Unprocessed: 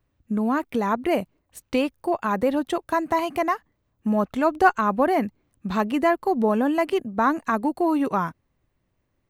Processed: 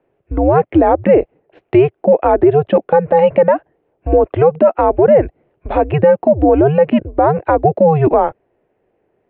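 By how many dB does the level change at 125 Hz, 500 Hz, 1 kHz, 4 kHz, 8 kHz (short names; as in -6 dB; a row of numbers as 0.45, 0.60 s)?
+18.0 dB, +14.5 dB, +7.0 dB, n/a, under -35 dB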